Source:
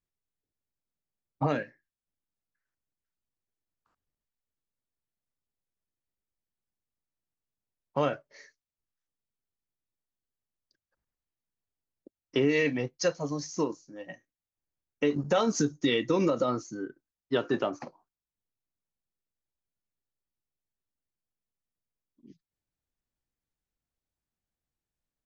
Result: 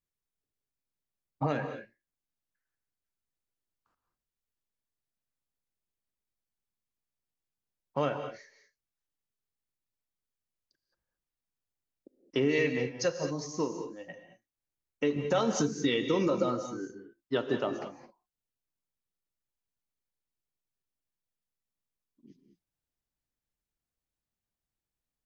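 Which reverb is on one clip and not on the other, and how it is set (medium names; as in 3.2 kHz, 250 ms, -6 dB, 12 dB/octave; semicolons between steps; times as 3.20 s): gated-style reverb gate 240 ms rising, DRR 7.5 dB; trim -2.5 dB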